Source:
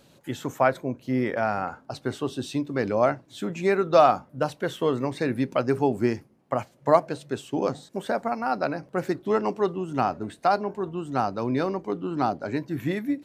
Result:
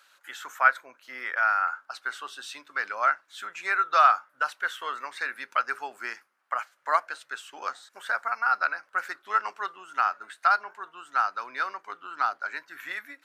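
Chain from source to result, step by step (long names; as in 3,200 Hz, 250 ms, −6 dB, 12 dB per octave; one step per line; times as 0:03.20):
high-pass with resonance 1,400 Hz, resonance Q 4
level −2 dB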